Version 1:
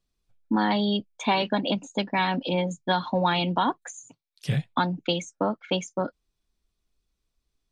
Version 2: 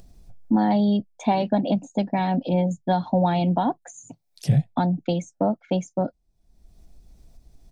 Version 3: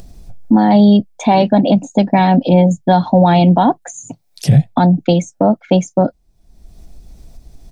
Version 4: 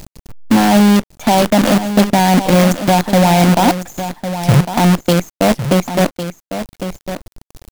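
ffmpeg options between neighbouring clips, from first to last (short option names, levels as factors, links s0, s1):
-af "firequalizer=gain_entry='entry(160,0);entry(430,-8);entry(700,0);entry(1100,-17);entry(1900,-14);entry(3000,-18);entry(5300,-11)':delay=0.05:min_phase=1,acompressor=mode=upward:threshold=0.0141:ratio=2.5,volume=2.24"
-af "alimiter=level_in=4.47:limit=0.891:release=50:level=0:latency=1,volume=0.891"
-filter_complex "[0:a]acrusher=bits=3:dc=4:mix=0:aa=0.000001,asplit=2[s0][s1];[s1]aecho=0:1:1104:0.299[s2];[s0][s2]amix=inputs=2:normalize=0,volume=0.891"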